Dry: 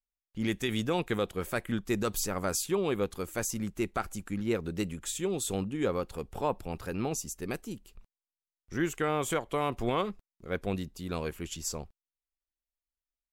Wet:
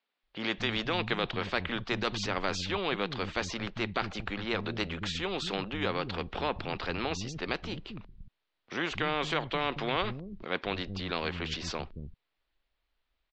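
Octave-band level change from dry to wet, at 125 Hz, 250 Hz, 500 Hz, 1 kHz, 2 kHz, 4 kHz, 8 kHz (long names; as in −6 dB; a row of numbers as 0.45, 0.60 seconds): −1.5, −3.0, −2.5, +1.5, +5.5, +7.0, −11.0 decibels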